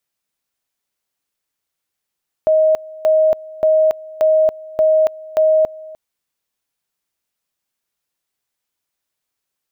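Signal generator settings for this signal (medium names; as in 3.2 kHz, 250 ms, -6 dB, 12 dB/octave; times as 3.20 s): two-level tone 628 Hz -9.5 dBFS, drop 21.5 dB, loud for 0.28 s, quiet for 0.30 s, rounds 6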